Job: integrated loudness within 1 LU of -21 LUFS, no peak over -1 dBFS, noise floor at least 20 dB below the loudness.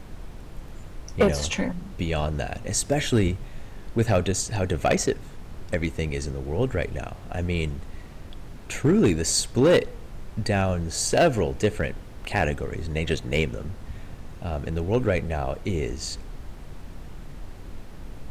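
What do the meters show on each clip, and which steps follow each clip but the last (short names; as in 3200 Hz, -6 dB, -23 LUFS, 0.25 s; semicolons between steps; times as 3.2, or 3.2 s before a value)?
clipped 0.5%; flat tops at -13.0 dBFS; noise floor -41 dBFS; noise floor target -46 dBFS; loudness -25.5 LUFS; peak -13.0 dBFS; loudness target -21.0 LUFS
-> clip repair -13 dBFS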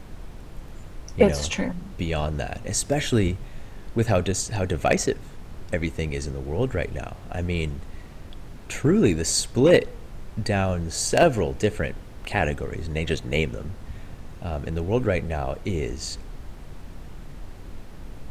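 clipped 0.0%; noise floor -41 dBFS; noise floor target -45 dBFS
-> noise print and reduce 6 dB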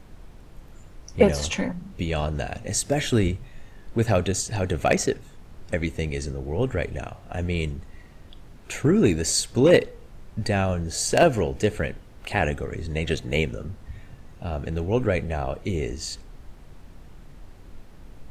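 noise floor -47 dBFS; loudness -25.0 LUFS; peak -4.0 dBFS; loudness target -21.0 LUFS
-> gain +4 dB; limiter -1 dBFS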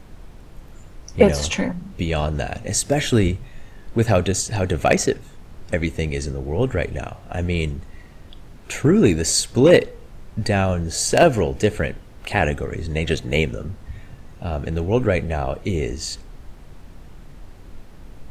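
loudness -21.0 LUFS; peak -1.0 dBFS; noise floor -43 dBFS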